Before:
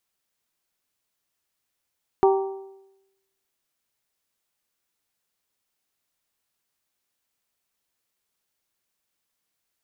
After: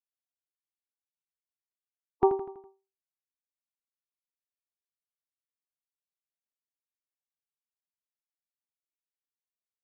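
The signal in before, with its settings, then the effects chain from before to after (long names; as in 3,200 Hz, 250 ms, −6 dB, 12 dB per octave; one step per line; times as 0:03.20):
struck metal bell, lowest mode 388 Hz, modes 4, decay 0.93 s, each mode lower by 5 dB, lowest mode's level −13 dB
spectral dynamics exaggerated over time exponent 3
high-frequency loss of the air 380 metres
repeating echo 82 ms, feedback 50%, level −10.5 dB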